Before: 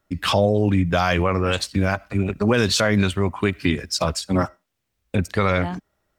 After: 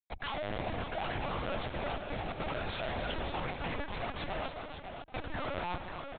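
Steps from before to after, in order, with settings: G.711 law mismatch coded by A; comb 3.5 ms, depth 38%; limiter -14.5 dBFS, peak gain reduction 9 dB; in parallel at +1 dB: compressor 8:1, threshold -28 dBFS, peak gain reduction 10 dB; on the sum: hard clip -17.5 dBFS, distortion -12 dB; ladder high-pass 650 Hz, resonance 55%; Schmitt trigger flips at -39 dBFS; on a send: tapped delay 80/142/276/455/552/792 ms -15/-13.5/-10/-17/-7.5/-18 dB; on the sum: LPC vocoder at 8 kHz pitch kept

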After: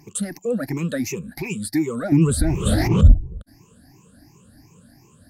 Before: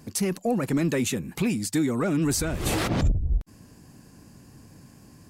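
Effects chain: moving spectral ripple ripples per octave 0.74, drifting +2.8 Hz, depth 23 dB; 2.12–3.14 low shelf 390 Hz +12 dB; gain -5.5 dB

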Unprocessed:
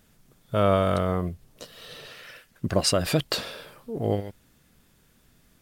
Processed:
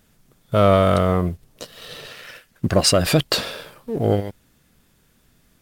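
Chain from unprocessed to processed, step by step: sample leveller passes 1; gain +3.5 dB

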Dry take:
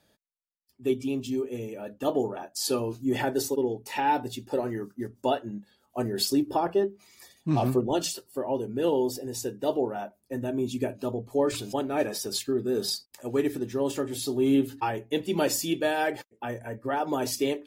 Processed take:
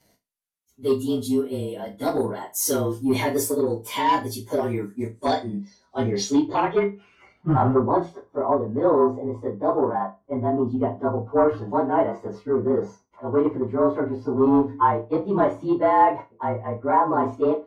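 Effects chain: inharmonic rescaling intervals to 109%; in parallel at -8.5 dB: sine folder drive 7 dB, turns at -13.5 dBFS; on the sum: flutter echo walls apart 6 m, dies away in 0.21 s; low-pass sweep 12000 Hz -> 1100 Hz, 4.79–7.83

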